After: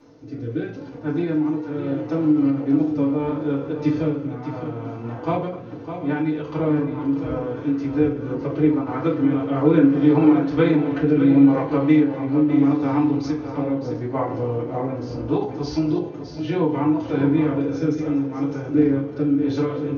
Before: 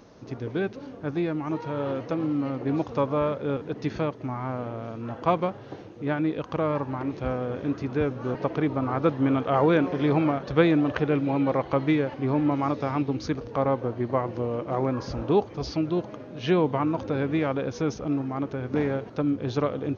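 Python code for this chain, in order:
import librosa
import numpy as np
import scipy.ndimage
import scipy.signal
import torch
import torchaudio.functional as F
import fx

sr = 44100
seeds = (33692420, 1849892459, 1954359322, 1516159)

p1 = fx.rotary(x, sr, hz=0.75)
p2 = p1 + fx.echo_multitap(p1, sr, ms=(43, 241, 607, 714), db=(-14.5, -19.0, -9.5, -19.0), dry=0)
p3 = fx.rev_fdn(p2, sr, rt60_s=0.45, lf_ratio=1.0, hf_ratio=0.7, size_ms=20.0, drr_db=-9.0)
p4 = fx.end_taper(p3, sr, db_per_s=100.0)
y = p4 * 10.0 ** (-6.5 / 20.0)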